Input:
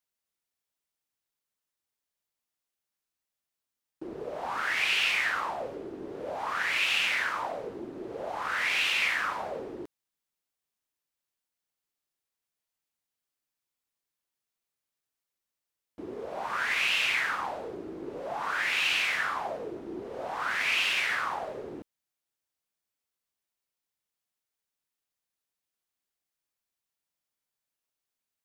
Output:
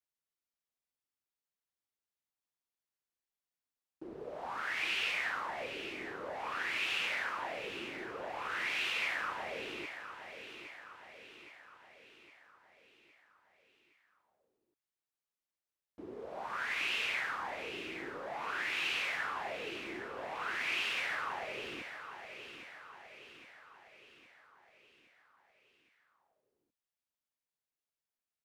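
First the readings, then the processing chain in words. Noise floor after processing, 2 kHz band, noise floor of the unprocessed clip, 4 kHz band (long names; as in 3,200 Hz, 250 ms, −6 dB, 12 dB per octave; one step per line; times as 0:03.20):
below −85 dBFS, −7.0 dB, below −85 dBFS, −8.0 dB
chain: high-shelf EQ 4,800 Hz −4.5 dB
on a send: repeating echo 814 ms, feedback 54%, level −10 dB
on the sum: level −7 dB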